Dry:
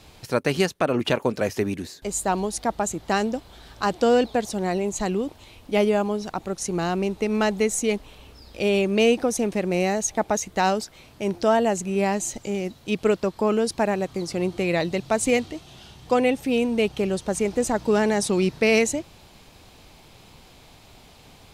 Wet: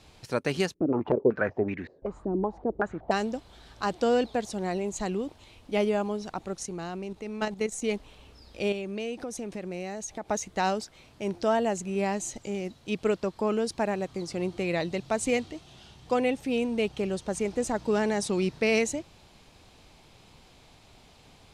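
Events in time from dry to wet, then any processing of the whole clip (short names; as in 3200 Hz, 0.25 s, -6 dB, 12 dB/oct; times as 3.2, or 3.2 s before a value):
0.74–3.11 stepped low-pass 5.3 Hz 320–2000 Hz
6.62–7.82 level quantiser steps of 10 dB
8.72–10.3 compressor 2.5:1, threshold -29 dBFS
whole clip: LPF 10000 Hz 12 dB/oct; gain -5.5 dB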